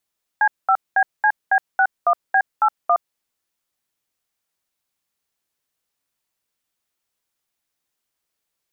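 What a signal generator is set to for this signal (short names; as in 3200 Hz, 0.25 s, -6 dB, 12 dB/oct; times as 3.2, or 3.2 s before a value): DTMF "C5BCB61B81", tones 67 ms, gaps 0.209 s, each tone -15 dBFS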